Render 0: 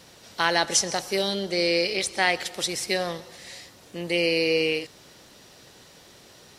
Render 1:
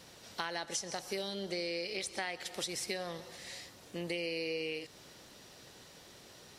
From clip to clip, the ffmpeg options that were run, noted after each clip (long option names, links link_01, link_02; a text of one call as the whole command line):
ffmpeg -i in.wav -af "acompressor=threshold=-30dB:ratio=6,volume=-4.5dB" out.wav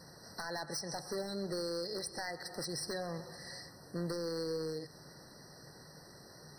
ffmpeg -i in.wav -af "equalizer=frequency=150:width=3.7:gain=9.5,aeval=exprs='0.0282*(abs(mod(val(0)/0.0282+3,4)-2)-1)':channel_layout=same,afftfilt=real='re*eq(mod(floor(b*sr/1024/2000),2),0)':imag='im*eq(mod(floor(b*sr/1024/2000),2),0)':win_size=1024:overlap=0.75,volume=1dB" out.wav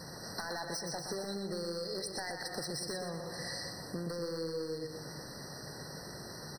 ffmpeg -i in.wav -af "acompressor=threshold=-45dB:ratio=6,aecho=1:1:122|244|366|488|610|732:0.501|0.241|0.115|0.0554|0.0266|0.0128,volume=8dB" out.wav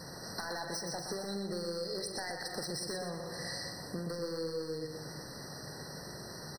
ffmpeg -i in.wav -filter_complex "[0:a]asplit=2[link_01][link_02];[link_02]adelay=45,volume=-11.5dB[link_03];[link_01][link_03]amix=inputs=2:normalize=0" out.wav